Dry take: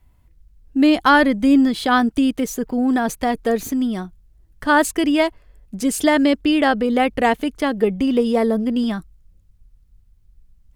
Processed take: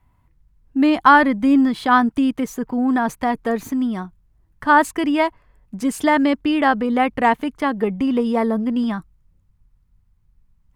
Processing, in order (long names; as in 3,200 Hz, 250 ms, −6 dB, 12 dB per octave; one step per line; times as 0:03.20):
graphic EQ with 10 bands 125 Hz +8 dB, 250 Hz +5 dB, 1,000 Hz +12 dB, 2,000 Hz +5 dB
level −7.5 dB